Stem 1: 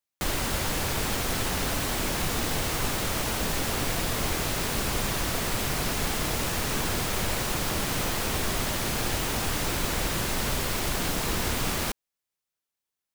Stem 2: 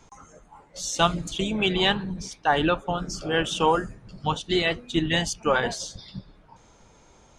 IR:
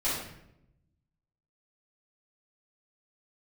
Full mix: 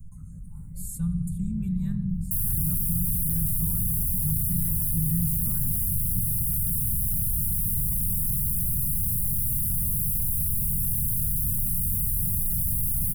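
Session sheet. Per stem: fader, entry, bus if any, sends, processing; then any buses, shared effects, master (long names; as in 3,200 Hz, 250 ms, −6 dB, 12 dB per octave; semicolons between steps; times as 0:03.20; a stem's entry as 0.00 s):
−5.5 dB, 2.10 s, no send, sine wavefolder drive 14 dB, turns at −14.5 dBFS
−5.0 dB, 0.00 s, send −18.5 dB, automatic gain control gain up to 14 dB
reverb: on, RT60 0.80 s, pre-delay 3 ms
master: inverse Chebyshev band-stop filter 330–6,300 Hz, stop band 40 dB; envelope flattener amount 50%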